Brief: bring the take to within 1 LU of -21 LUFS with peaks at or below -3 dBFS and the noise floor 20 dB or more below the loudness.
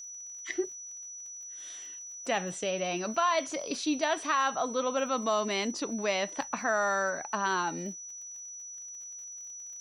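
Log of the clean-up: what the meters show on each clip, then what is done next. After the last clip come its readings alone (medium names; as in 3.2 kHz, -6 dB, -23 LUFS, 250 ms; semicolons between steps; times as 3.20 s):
tick rate 46 per s; steady tone 5.9 kHz; tone level -41 dBFS; loudness -32.0 LUFS; peak level -15.5 dBFS; loudness target -21.0 LUFS
-> de-click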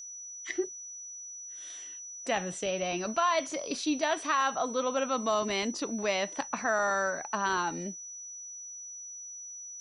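tick rate 0.10 per s; steady tone 5.9 kHz; tone level -41 dBFS
-> band-stop 5.9 kHz, Q 30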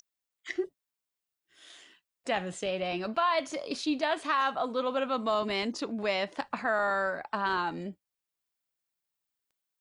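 steady tone not found; loudness -31.0 LUFS; peak level -15.5 dBFS; loudness target -21.0 LUFS
-> trim +10 dB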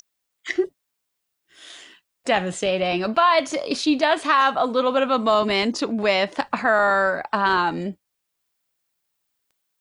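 loudness -21.0 LUFS; peak level -5.5 dBFS; noise floor -78 dBFS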